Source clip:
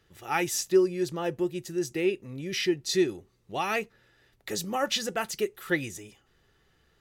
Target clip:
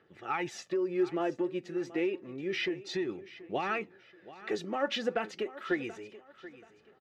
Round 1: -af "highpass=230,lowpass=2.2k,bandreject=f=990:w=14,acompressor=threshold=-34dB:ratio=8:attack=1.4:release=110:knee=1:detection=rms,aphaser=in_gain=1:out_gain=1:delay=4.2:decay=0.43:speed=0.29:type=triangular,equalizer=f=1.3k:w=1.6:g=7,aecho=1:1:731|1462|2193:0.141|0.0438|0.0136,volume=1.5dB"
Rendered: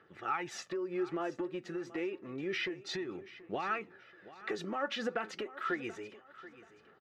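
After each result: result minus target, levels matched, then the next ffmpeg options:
compressor: peak gain reduction +6.5 dB; 1000 Hz band +2.5 dB
-af "highpass=230,lowpass=2.2k,bandreject=f=990:w=14,acompressor=threshold=-26.5dB:ratio=8:attack=1.4:release=110:knee=1:detection=rms,aphaser=in_gain=1:out_gain=1:delay=4.2:decay=0.43:speed=0.29:type=triangular,equalizer=f=1.3k:w=1.6:g=7,aecho=1:1:731|1462|2193:0.141|0.0438|0.0136,volume=1.5dB"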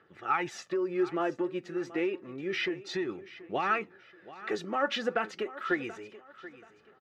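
1000 Hz band +3.0 dB
-af "highpass=230,lowpass=2.2k,bandreject=f=990:w=14,acompressor=threshold=-26.5dB:ratio=8:attack=1.4:release=110:knee=1:detection=rms,aphaser=in_gain=1:out_gain=1:delay=4.2:decay=0.43:speed=0.29:type=triangular,aecho=1:1:731|1462|2193:0.141|0.0438|0.0136,volume=1.5dB"

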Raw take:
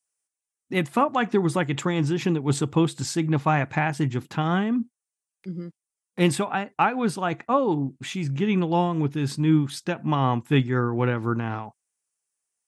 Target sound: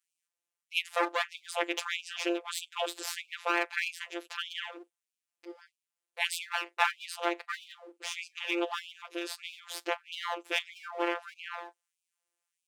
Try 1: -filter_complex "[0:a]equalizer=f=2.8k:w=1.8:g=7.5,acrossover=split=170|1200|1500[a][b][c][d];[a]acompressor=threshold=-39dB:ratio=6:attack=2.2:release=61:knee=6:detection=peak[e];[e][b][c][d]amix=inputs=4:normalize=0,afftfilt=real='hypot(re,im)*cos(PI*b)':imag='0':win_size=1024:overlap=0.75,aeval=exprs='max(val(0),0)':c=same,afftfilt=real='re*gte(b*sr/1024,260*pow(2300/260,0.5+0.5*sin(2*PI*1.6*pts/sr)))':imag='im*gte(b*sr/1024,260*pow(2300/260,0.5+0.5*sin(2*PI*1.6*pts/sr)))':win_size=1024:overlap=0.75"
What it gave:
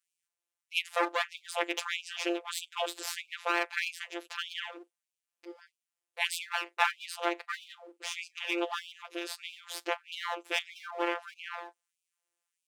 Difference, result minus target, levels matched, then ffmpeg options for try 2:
compressor: peak gain reduction +9 dB
-filter_complex "[0:a]equalizer=f=2.8k:w=1.8:g=7.5,acrossover=split=170|1200|1500[a][b][c][d];[a]acompressor=threshold=-28dB:ratio=6:attack=2.2:release=61:knee=6:detection=peak[e];[e][b][c][d]amix=inputs=4:normalize=0,afftfilt=real='hypot(re,im)*cos(PI*b)':imag='0':win_size=1024:overlap=0.75,aeval=exprs='max(val(0),0)':c=same,afftfilt=real='re*gte(b*sr/1024,260*pow(2300/260,0.5+0.5*sin(2*PI*1.6*pts/sr)))':imag='im*gte(b*sr/1024,260*pow(2300/260,0.5+0.5*sin(2*PI*1.6*pts/sr)))':win_size=1024:overlap=0.75"

